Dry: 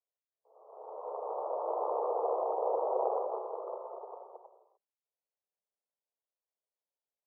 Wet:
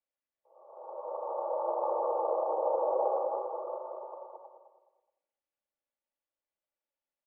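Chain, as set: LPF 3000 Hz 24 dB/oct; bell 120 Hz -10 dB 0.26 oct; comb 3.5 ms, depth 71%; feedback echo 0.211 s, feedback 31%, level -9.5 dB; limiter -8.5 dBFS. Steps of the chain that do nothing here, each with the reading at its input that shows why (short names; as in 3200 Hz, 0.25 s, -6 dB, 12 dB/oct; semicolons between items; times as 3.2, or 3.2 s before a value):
LPF 3000 Hz: input band ends at 1300 Hz; bell 120 Hz: input band starts at 320 Hz; limiter -8.5 dBFS: input peak -18.0 dBFS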